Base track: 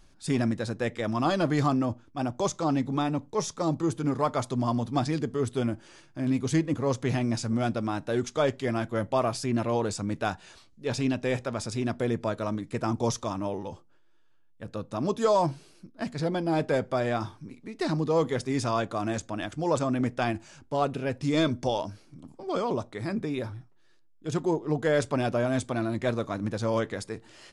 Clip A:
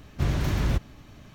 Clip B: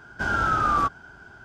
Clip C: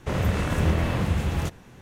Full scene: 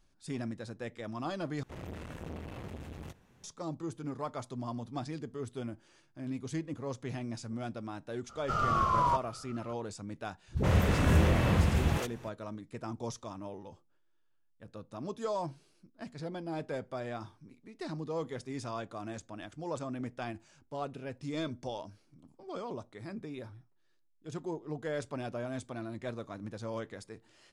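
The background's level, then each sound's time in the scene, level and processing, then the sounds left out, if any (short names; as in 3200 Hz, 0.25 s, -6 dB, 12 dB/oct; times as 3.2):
base track -11.5 dB
1.63 replace with C -15 dB + core saturation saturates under 540 Hz
8.29 add B -5.5 dB + frequency shift -200 Hz
10.48 add C -2 dB + dispersion highs, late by 93 ms, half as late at 350 Hz
not used: A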